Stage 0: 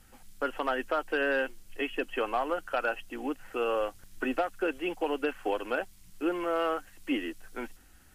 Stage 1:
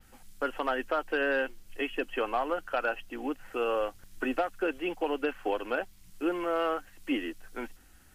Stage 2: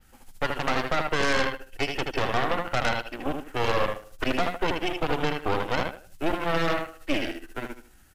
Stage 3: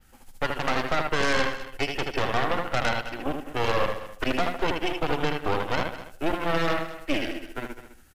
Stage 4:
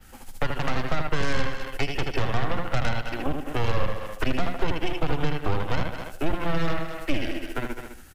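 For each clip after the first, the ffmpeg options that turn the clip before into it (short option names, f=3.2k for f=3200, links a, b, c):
-af "adynamicequalizer=threshold=0.001:dfrequency=9300:dqfactor=0.82:tfrequency=9300:tqfactor=0.82:attack=5:release=100:ratio=0.375:range=2.5:mode=cutabove:tftype=bell"
-af "aecho=1:1:78|156|234|312:0.596|0.203|0.0689|0.0234,aeval=exprs='0.168*(cos(1*acos(clip(val(0)/0.168,-1,1)))-cos(1*PI/2))+0.0596*(cos(6*acos(clip(val(0)/0.168,-1,1)))-cos(6*PI/2))':c=same"
-af "aecho=1:1:207:0.2"
-filter_complex "[0:a]acrossover=split=170[a][b];[b]acompressor=threshold=-37dB:ratio=4[c];[a][c]amix=inputs=2:normalize=0,volume=8dB"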